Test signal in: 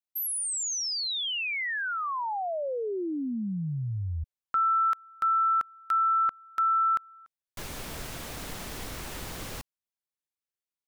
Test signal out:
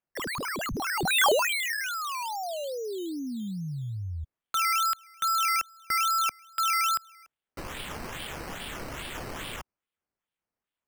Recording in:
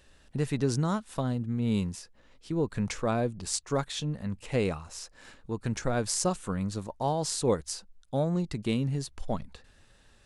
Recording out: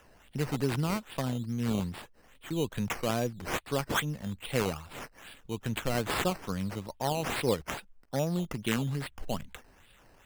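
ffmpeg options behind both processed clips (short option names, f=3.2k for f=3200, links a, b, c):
-filter_complex "[0:a]equalizer=f=3.2k:w=1.9:g=13.5,acrossover=split=120[a][b];[b]acrusher=samples=10:mix=1:aa=0.000001:lfo=1:lforange=6:lforate=2.4[c];[a][c]amix=inputs=2:normalize=0,volume=-2.5dB"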